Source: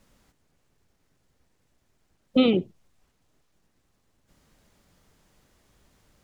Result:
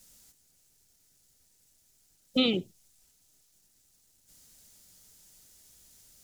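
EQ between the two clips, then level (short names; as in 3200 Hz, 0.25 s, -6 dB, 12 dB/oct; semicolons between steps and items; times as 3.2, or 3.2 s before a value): Butterworth band-stop 1100 Hz, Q 7.6; tone controls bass +2 dB, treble +14 dB; high shelf 2700 Hz +10 dB; -8.0 dB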